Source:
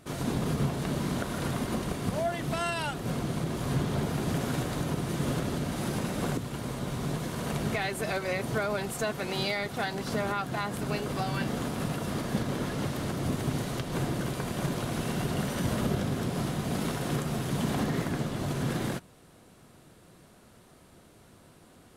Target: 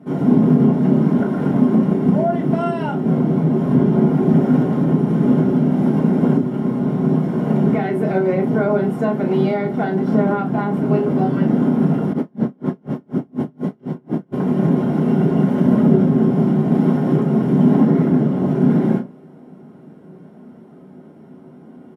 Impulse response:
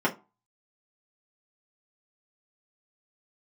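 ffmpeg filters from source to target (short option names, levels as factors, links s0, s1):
-filter_complex "[0:a]highpass=100,tiltshelf=f=970:g=8,asplit=2[s0][s1];[s1]adelay=32,volume=0.376[s2];[s0][s2]amix=inputs=2:normalize=0[s3];[1:a]atrim=start_sample=2205[s4];[s3][s4]afir=irnorm=-1:irlink=0,asplit=3[s5][s6][s7];[s5]afade=t=out:st=12.12:d=0.02[s8];[s6]aeval=exprs='val(0)*pow(10,-39*(0.5-0.5*cos(2*PI*4.1*n/s))/20)':c=same,afade=t=in:st=12.12:d=0.02,afade=t=out:st=14.32:d=0.02[s9];[s7]afade=t=in:st=14.32:d=0.02[s10];[s8][s9][s10]amix=inputs=3:normalize=0,volume=0.422"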